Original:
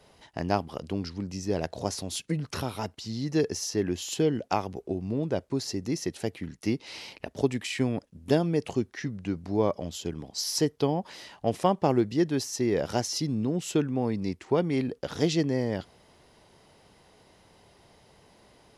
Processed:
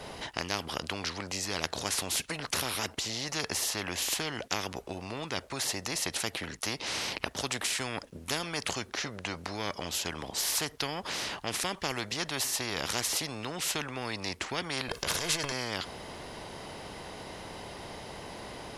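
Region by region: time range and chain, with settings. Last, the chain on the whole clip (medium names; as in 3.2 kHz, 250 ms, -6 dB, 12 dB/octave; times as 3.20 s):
14.88–15.52 s: transient shaper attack -10 dB, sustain +11 dB + comb 1.9 ms, depth 82%
whole clip: tone controls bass -2 dB, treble -3 dB; spectrum-flattening compressor 4:1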